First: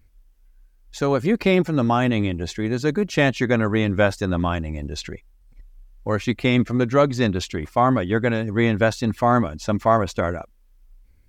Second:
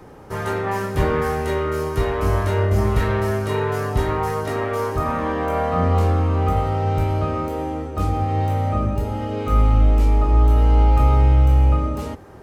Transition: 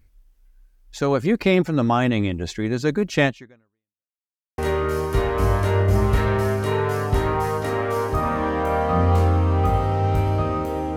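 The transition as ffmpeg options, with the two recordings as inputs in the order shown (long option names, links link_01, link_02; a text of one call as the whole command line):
ffmpeg -i cue0.wav -i cue1.wav -filter_complex "[0:a]apad=whole_dur=10.96,atrim=end=10.96,asplit=2[link_01][link_02];[link_01]atrim=end=4.1,asetpts=PTS-STARTPTS,afade=type=out:start_time=3.25:duration=0.85:curve=exp[link_03];[link_02]atrim=start=4.1:end=4.58,asetpts=PTS-STARTPTS,volume=0[link_04];[1:a]atrim=start=1.41:end=7.79,asetpts=PTS-STARTPTS,afade=type=in:duration=0.004:curve=hsin[link_05];[link_03][link_04][link_05]concat=n=3:v=0:a=1" out.wav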